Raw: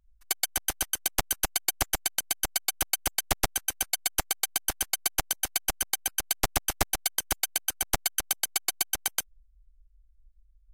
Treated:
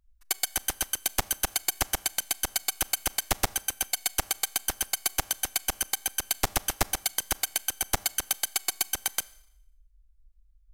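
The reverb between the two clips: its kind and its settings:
four-comb reverb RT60 0.79 s, combs from 28 ms, DRR 20 dB

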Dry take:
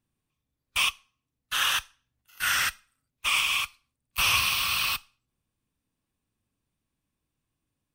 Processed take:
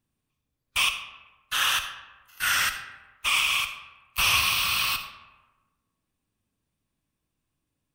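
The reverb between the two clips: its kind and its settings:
comb and all-pass reverb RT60 1.2 s, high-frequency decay 0.55×, pre-delay 20 ms, DRR 8.5 dB
level +1 dB

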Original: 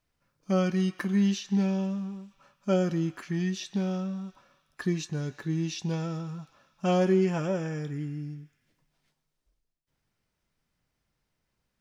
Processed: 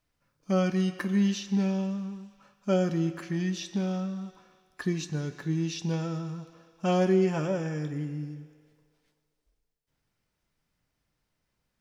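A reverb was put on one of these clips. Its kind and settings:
feedback delay network reverb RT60 2.1 s, low-frequency decay 0.7×, high-frequency decay 0.9×, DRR 12.5 dB

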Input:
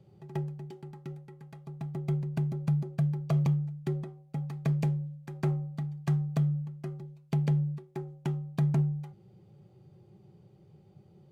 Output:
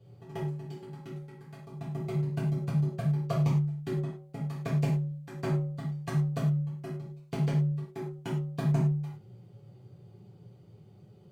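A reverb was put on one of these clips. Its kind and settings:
reverb whose tail is shaped and stops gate 140 ms falling, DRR −7.5 dB
level −4.5 dB

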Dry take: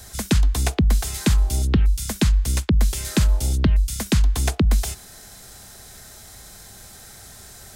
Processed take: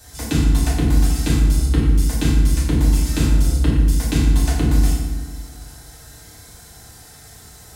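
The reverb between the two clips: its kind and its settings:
feedback delay network reverb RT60 1.3 s, low-frequency decay 1.5×, high-frequency decay 0.65×, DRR −7.5 dB
level −7.5 dB

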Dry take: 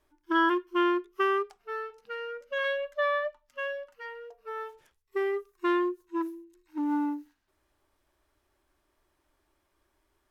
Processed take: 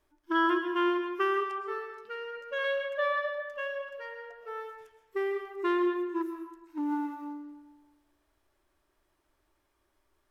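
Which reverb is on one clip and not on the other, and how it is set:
comb and all-pass reverb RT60 1.2 s, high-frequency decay 0.65×, pre-delay 85 ms, DRR 5.5 dB
level −2 dB

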